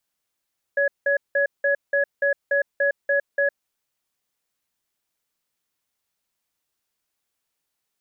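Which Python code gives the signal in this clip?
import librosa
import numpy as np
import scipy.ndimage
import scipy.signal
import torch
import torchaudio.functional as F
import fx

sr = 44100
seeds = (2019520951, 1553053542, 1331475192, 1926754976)

y = fx.cadence(sr, length_s=2.9, low_hz=565.0, high_hz=1680.0, on_s=0.11, off_s=0.18, level_db=-20.0)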